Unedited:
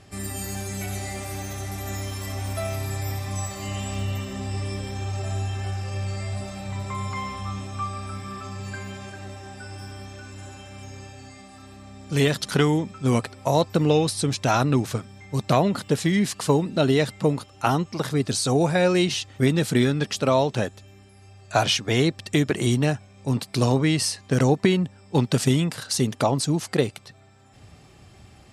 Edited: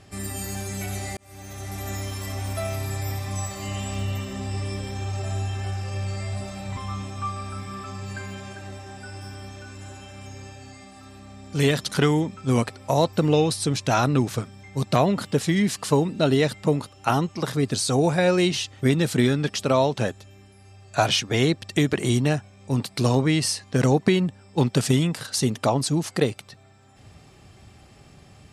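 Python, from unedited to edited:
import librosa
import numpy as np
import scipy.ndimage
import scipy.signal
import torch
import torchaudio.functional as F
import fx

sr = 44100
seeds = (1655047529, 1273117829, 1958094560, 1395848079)

y = fx.edit(x, sr, fx.fade_in_span(start_s=1.17, length_s=0.64),
    fx.cut(start_s=6.77, length_s=0.57), tone=tone)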